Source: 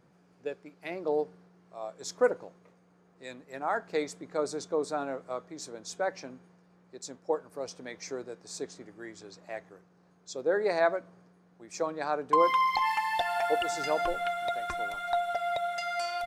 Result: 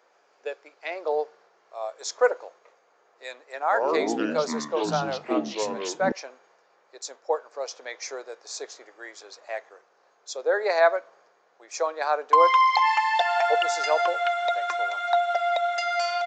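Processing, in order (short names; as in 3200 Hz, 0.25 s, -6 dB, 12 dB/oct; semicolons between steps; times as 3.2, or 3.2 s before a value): HPF 500 Hz 24 dB/oct; 3.61–6.12 echoes that change speed 0.105 s, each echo -6 st, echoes 3; downsampling 16000 Hz; gain +7 dB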